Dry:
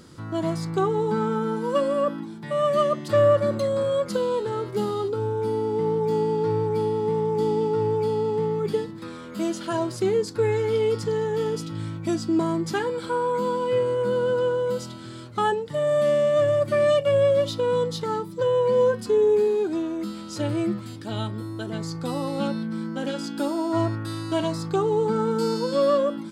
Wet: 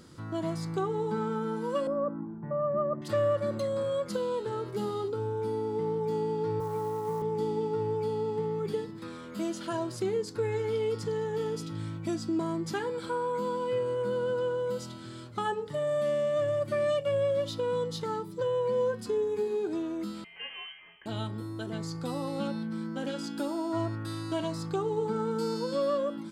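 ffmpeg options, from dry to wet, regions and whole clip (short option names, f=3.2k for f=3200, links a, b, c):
-filter_complex "[0:a]asettb=1/sr,asplit=3[a][b][c];[a]atrim=end=1.874[d];[b]atrim=start=1.87:end=3.02,asetpts=PTS-STARTPTS,afade=t=in:d=0.004:c=qsin,afade=t=out:st=1.146:d=0.004:c=qsin,lowpass=f=1.3k:w=0.5412,lowpass=f=1.3k:w=1.3066,lowshelf=f=110:g=10[e];[c]atrim=start=3.016[f];[d][e]acrossfade=d=0.004:c1=hsin:c2=qsin[g];[g][f]acrossfade=d=0.004:c1=qsin:c2=hsin,asettb=1/sr,asplit=3[h][i][j];[h]atrim=end=6.604[k];[i]atrim=start=6.6:end=7.22,asetpts=PTS-STARTPTS,afade=t=in:d=0.004:c=qsin,afade=t=out:st=0.616:d=0.004:c=qsin,asuperstop=centerf=4300:order=8:qfactor=0.73,highpass=f=110:w=0.5412,highpass=f=110:w=1.3066,equalizer=f=220:t=q:w=4:g=-9,equalizer=f=360:t=q:w=4:g=-9,equalizer=f=700:t=q:w=4:g=5,equalizer=f=1.1k:t=q:w=4:g=8,equalizer=f=3.5k:t=q:w=4:g=-8,lowpass=f=9.2k:w=0.5412,lowpass=f=9.2k:w=1.3066,acrusher=bits=6:mode=log:mix=0:aa=0.000001[l];[j]atrim=start=7.216[m];[k][l]acrossfade=d=0.004:c1=hsin:c2=qsin[n];[n][m]acrossfade=d=0.004:c1=qsin:c2=hsin,asettb=1/sr,asplit=3[o][p][q];[o]atrim=end=20.244[r];[p]atrim=start=20.24:end=21.06,asetpts=PTS-STARTPTS,afade=t=in:d=0.004:c=qsin,afade=t=out:st=0.816:d=0.004:c=qsin,highpass=810,bandreject=f=2k:w=11,lowpass=f=2.9k:t=q:w=0.5098,lowpass=f=2.9k:t=q:w=0.6013,lowpass=f=2.9k:t=q:w=0.9,lowpass=f=2.9k:t=q:w=2.563,afreqshift=-3400[s];[q]atrim=start=21.056[t];[r][s]acrossfade=d=0.004:c1=hsin:c2=qsin[u];[u][t]acrossfade=d=0.004:c1=qsin:c2=hsin,bandreject=f=422.4:t=h:w=4,bandreject=f=844.8:t=h:w=4,bandreject=f=1.2672k:t=h:w=4,bandreject=f=1.6896k:t=h:w=4,bandreject=f=2.112k:t=h:w=4,bandreject=f=2.5344k:t=h:w=4,bandreject=f=2.9568k:t=h:w=4,bandreject=f=3.3792k:t=h:w=4,bandreject=f=3.8016k:t=h:w=4,bandreject=f=4.224k:t=h:w=4,bandreject=f=4.6464k:t=h:w=4,bandreject=f=5.0688k:t=h:w=4,bandreject=f=5.4912k:t=h:w=4,bandreject=f=5.9136k:t=h:w=4,bandreject=f=6.336k:t=h:w=4,bandreject=f=6.7584k:t=h:w=4,bandreject=f=7.1808k:t=h:w=4,bandreject=f=7.6032k:t=h:w=4,bandreject=f=8.0256k:t=h:w=4,bandreject=f=8.448k:t=h:w=4,bandreject=f=8.8704k:t=h:w=4,bandreject=f=9.2928k:t=h:w=4,bandreject=f=9.7152k:t=h:w=4,bandreject=f=10.1376k:t=h:w=4,bandreject=f=10.56k:t=h:w=4,bandreject=f=10.9824k:t=h:w=4,bandreject=f=11.4048k:t=h:w=4,bandreject=f=11.8272k:t=h:w=4,bandreject=f=12.2496k:t=h:w=4,bandreject=f=12.672k:t=h:w=4,bandreject=f=13.0944k:t=h:w=4,bandreject=f=13.5168k:t=h:w=4,bandreject=f=13.9392k:t=h:w=4,bandreject=f=14.3616k:t=h:w=4,bandreject=f=14.784k:t=h:w=4,acompressor=threshold=-27dB:ratio=1.5,volume=-4.5dB"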